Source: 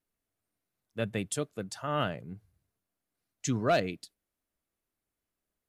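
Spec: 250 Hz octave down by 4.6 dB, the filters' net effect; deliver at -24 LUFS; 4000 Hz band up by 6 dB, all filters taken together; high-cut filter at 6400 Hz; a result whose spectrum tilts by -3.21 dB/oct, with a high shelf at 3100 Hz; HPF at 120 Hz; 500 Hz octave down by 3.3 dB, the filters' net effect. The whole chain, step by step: HPF 120 Hz; LPF 6400 Hz; bell 250 Hz -4.5 dB; bell 500 Hz -4 dB; high shelf 3100 Hz +6 dB; bell 4000 Hz +4 dB; gain +9 dB

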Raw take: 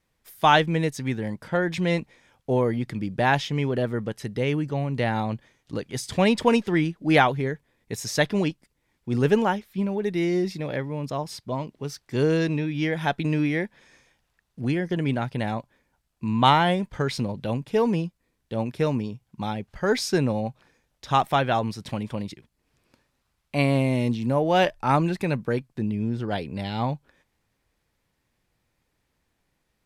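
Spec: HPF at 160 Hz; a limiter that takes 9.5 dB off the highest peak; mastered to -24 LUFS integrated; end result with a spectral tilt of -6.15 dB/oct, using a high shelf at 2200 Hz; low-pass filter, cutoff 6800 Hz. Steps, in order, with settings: HPF 160 Hz; LPF 6800 Hz; high shelf 2200 Hz -8.5 dB; gain +4.5 dB; limiter -11 dBFS

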